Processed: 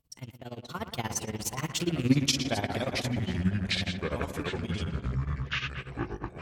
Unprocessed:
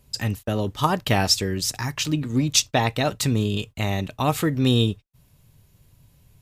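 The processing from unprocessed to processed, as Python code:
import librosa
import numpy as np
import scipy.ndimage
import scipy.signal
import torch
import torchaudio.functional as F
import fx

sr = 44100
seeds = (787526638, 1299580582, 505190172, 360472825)

p1 = fx.rattle_buzz(x, sr, strikes_db=-33.0, level_db=-28.0)
p2 = fx.doppler_pass(p1, sr, speed_mps=42, closest_m=4.9, pass_at_s=2.1)
p3 = p2 + fx.echo_tape(p2, sr, ms=111, feedback_pct=80, wet_db=-8.5, lp_hz=2400.0, drive_db=11.0, wow_cents=21, dry=0)
p4 = p3 * (1.0 - 0.92 / 2.0 + 0.92 / 2.0 * np.cos(2.0 * np.pi * 17.0 * (np.arange(len(p3)) / sr)))
p5 = fx.echo_pitch(p4, sr, ms=479, semitones=-6, count=3, db_per_echo=-6.0)
p6 = fx.over_compress(p5, sr, threshold_db=-40.0, ratio=-1.0)
p7 = p5 + F.gain(torch.from_numpy(p6), 1.0).numpy()
y = F.gain(torch.from_numpy(p7), 1.5).numpy()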